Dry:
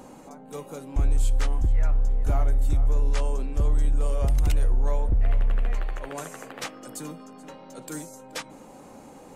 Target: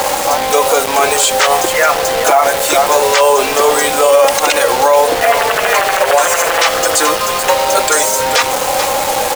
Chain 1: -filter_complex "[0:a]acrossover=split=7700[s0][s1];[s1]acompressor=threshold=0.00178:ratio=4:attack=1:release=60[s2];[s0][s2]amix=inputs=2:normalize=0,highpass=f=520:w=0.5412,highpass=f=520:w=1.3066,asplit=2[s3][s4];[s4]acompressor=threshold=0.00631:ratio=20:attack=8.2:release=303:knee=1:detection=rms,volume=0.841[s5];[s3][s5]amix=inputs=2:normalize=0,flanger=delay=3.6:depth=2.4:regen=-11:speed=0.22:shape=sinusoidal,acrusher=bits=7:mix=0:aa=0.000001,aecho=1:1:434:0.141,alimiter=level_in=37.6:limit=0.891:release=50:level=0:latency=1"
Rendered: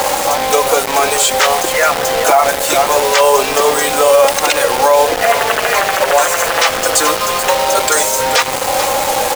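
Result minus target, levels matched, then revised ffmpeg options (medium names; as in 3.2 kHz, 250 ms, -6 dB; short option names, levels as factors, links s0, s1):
compression: peak gain reduction +10 dB
-filter_complex "[0:a]acrossover=split=7700[s0][s1];[s1]acompressor=threshold=0.00178:ratio=4:attack=1:release=60[s2];[s0][s2]amix=inputs=2:normalize=0,highpass=f=520:w=0.5412,highpass=f=520:w=1.3066,asplit=2[s3][s4];[s4]acompressor=threshold=0.0211:ratio=20:attack=8.2:release=303:knee=1:detection=rms,volume=0.841[s5];[s3][s5]amix=inputs=2:normalize=0,flanger=delay=3.6:depth=2.4:regen=-11:speed=0.22:shape=sinusoidal,acrusher=bits=7:mix=0:aa=0.000001,aecho=1:1:434:0.141,alimiter=level_in=37.6:limit=0.891:release=50:level=0:latency=1"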